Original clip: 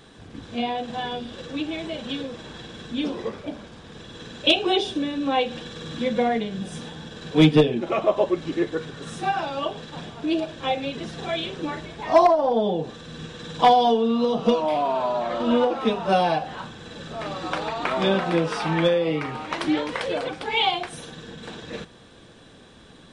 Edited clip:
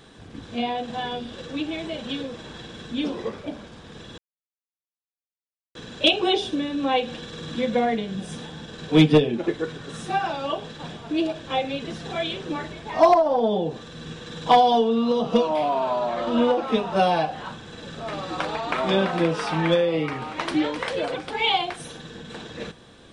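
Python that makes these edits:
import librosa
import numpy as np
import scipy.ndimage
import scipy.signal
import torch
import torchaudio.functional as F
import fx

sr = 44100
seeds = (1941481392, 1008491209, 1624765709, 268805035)

y = fx.edit(x, sr, fx.insert_silence(at_s=4.18, length_s=1.57),
    fx.cut(start_s=7.91, length_s=0.7), tone=tone)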